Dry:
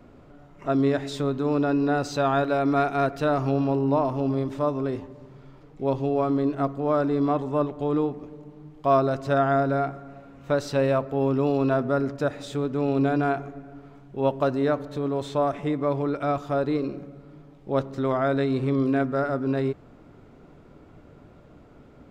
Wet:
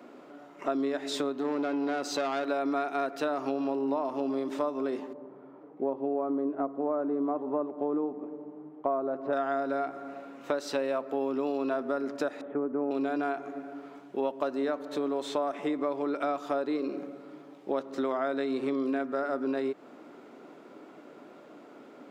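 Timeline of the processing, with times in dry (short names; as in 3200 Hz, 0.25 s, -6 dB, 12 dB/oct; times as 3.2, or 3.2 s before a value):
1.32–2.47 tube stage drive 21 dB, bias 0.4
5.13–9.33 LPF 1000 Hz
12.41–12.91 Bessel low-pass 1100 Hz, order 8
whole clip: HPF 260 Hz 24 dB/oct; bell 460 Hz -2.5 dB 0.22 oct; compressor 6:1, threshold -31 dBFS; gain +4 dB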